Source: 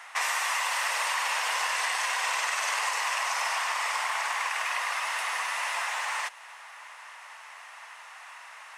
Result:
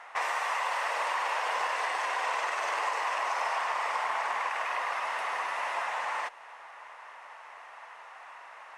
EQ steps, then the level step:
spectral tilt −4.5 dB per octave
low-shelf EQ 320 Hz +7 dB
0.0 dB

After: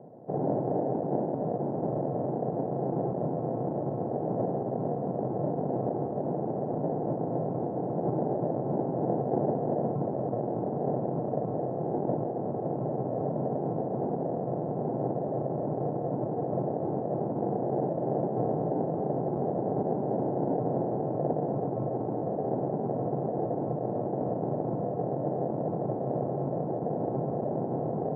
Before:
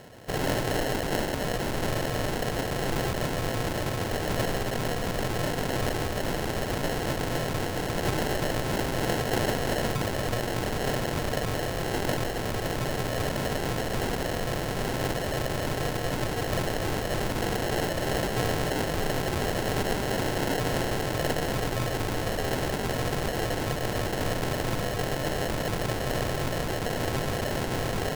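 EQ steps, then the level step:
elliptic band-pass filter 140–770 Hz, stop band 80 dB
high-frequency loss of the air 92 metres
+1.5 dB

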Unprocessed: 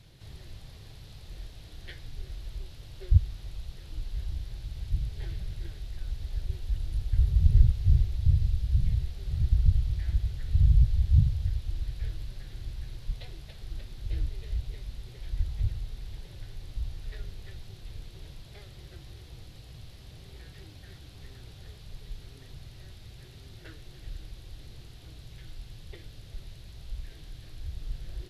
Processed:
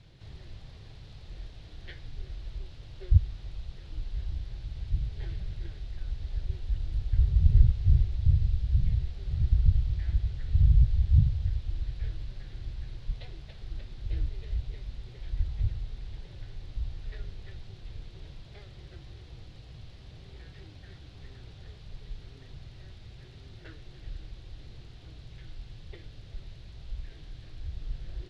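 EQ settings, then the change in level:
high-frequency loss of the air 98 metres
0.0 dB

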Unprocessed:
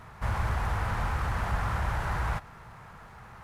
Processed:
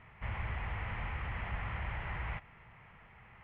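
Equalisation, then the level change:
high-frequency loss of the air 500 metres
flat-topped bell 2,500 Hz +14 dB 1 octave
−9.0 dB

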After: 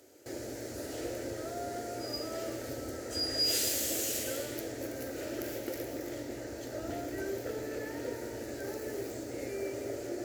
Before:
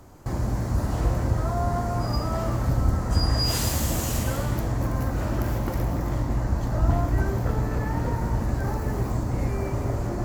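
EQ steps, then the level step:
high-pass filter 300 Hz 12 dB per octave
parametric band 770 Hz −8.5 dB 0.43 octaves
phaser with its sweep stopped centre 440 Hz, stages 4
−1.0 dB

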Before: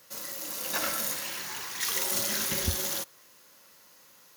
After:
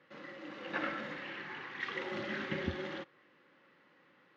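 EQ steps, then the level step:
loudspeaker in its box 210–2,700 Hz, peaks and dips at 220 Hz −5 dB, 440 Hz −7 dB, 650 Hz −10 dB, 980 Hz −10 dB, 1,400 Hz −5 dB, 2,500 Hz −4 dB
parametric band 680 Hz −2.5 dB
high-shelf EQ 2,100 Hz −11 dB
+6.0 dB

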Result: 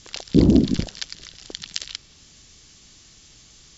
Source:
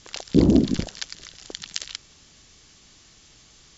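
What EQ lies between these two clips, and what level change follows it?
low-shelf EQ 440 Hz +8 dB
high-shelf EQ 2,100 Hz +9 dB
dynamic equaliser 6,800 Hz, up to −5 dB, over −46 dBFS, Q 2.4
−4.5 dB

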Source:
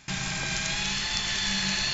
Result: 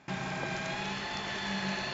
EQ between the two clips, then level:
resonant band-pass 490 Hz, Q 0.83
+4.5 dB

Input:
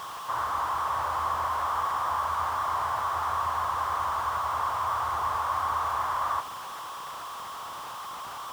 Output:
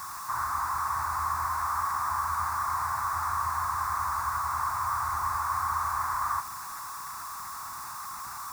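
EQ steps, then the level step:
low-shelf EQ 110 Hz +9 dB
high-shelf EQ 2,100 Hz +11.5 dB
phaser with its sweep stopped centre 1,300 Hz, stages 4
−3.0 dB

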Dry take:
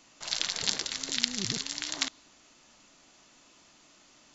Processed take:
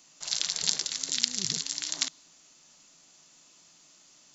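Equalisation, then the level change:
bass and treble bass −5 dB, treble +11 dB
parametric band 160 Hz +12.5 dB 0.34 octaves
−5.0 dB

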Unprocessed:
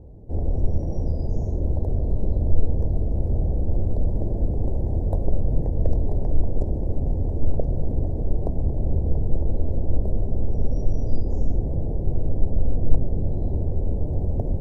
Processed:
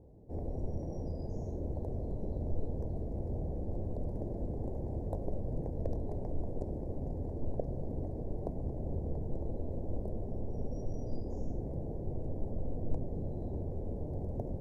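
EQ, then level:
low-shelf EQ 94 Hz −11.5 dB
−7.5 dB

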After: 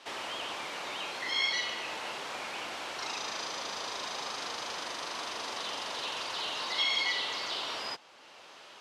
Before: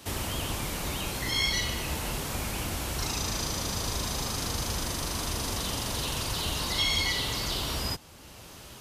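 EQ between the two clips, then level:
band-pass filter 570–4,000 Hz
0.0 dB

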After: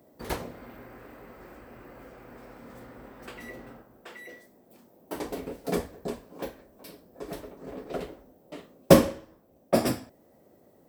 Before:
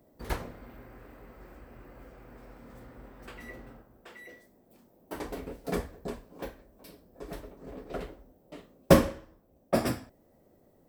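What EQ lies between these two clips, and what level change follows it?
high-pass filter 160 Hz 6 dB per octave
dynamic equaliser 1,500 Hz, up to −5 dB, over −50 dBFS, Q 0.91
+5.0 dB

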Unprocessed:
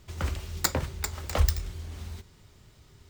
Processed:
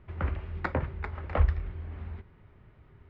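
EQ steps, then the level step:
low-pass filter 2,200 Hz 24 dB per octave
0.0 dB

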